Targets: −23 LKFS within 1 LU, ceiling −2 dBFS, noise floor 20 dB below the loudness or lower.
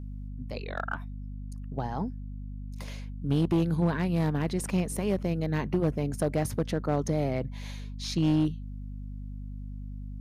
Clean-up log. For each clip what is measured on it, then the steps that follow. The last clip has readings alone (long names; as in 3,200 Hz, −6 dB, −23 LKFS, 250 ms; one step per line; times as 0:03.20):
share of clipped samples 0.8%; peaks flattened at −19.0 dBFS; mains hum 50 Hz; hum harmonics up to 250 Hz; level of the hum −35 dBFS; integrated loudness −30.0 LKFS; sample peak −19.0 dBFS; target loudness −23.0 LKFS
→ clipped peaks rebuilt −19 dBFS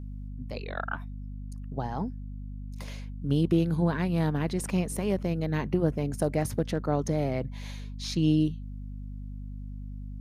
share of clipped samples 0.0%; mains hum 50 Hz; hum harmonics up to 250 Hz; level of the hum −35 dBFS
→ hum removal 50 Hz, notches 5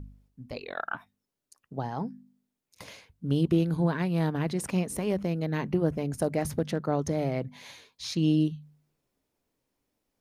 mains hum none found; integrated loudness −29.5 LKFS; sample peak −14.0 dBFS; target loudness −23.0 LKFS
→ level +6.5 dB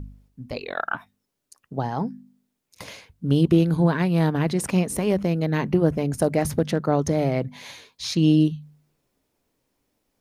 integrated loudness −23.0 LKFS; sample peak −7.5 dBFS; background noise floor −78 dBFS